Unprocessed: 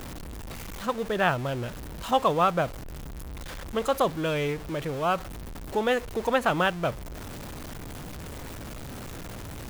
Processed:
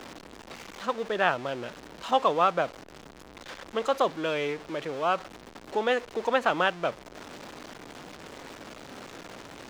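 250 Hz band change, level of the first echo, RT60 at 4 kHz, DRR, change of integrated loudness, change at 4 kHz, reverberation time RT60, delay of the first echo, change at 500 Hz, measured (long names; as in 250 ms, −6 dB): −4.5 dB, no echo audible, no reverb audible, no reverb audible, −1.0 dB, −0.5 dB, no reverb audible, no echo audible, −1.0 dB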